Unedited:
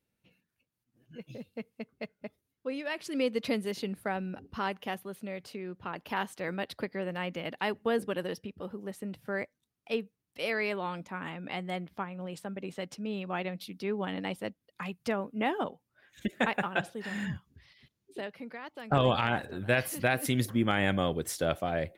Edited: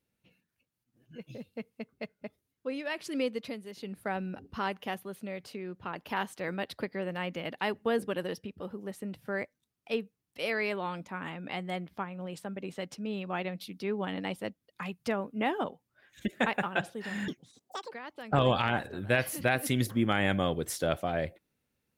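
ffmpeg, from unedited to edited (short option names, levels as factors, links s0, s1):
-filter_complex "[0:a]asplit=5[s0][s1][s2][s3][s4];[s0]atrim=end=3.56,asetpts=PTS-STARTPTS,afade=t=out:st=3.13:d=0.43:silence=0.298538[s5];[s1]atrim=start=3.56:end=3.72,asetpts=PTS-STARTPTS,volume=0.299[s6];[s2]atrim=start=3.72:end=17.284,asetpts=PTS-STARTPTS,afade=t=in:d=0.43:silence=0.298538[s7];[s3]atrim=start=17.28:end=18.51,asetpts=PTS-STARTPTS,asetrate=84672,aresample=44100[s8];[s4]atrim=start=18.506[s9];[s5][s6][s7]concat=n=3:v=0:a=1[s10];[s10][s8]acrossfade=d=0.004:c1=hsin:c2=hsin[s11];[s11][s9]acrossfade=d=0.004:c1=hsin:c2=hsin"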